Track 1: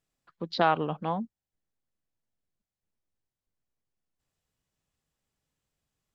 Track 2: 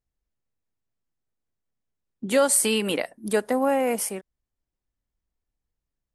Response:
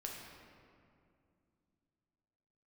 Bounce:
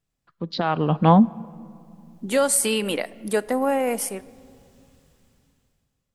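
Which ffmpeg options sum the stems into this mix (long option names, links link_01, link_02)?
-filter_complex "[0:a]bass=frequency=250:gain=7,treble=frequency=4000:gain=0,alimiter=limit=-16.5dB:level=0:latency=1:release=385,dynaudnorm=framelen=280:gausssize=9:maxgain=13.5dB,volume=-1dB,asplit=2[link_01][link_02];[link_02]volume=-17.5dB[link_03];[1:a]volume=-11dB,asplit=2[link_04][link_05];[link_05]volume=-15dB[link_06];[2:a]atrim=start_sample=2205[link_07];[link_03][link_06]amix=inputs=2:normalize=0[link_08];[link_08][link_07]afir=irnorm=-1:irlink=0[link_09];[link_01][link_04][link_09]amix=inputs=3:normalize=0,dynaudnorm=framelen=280:gausssize=5:maxgain=10.5dB"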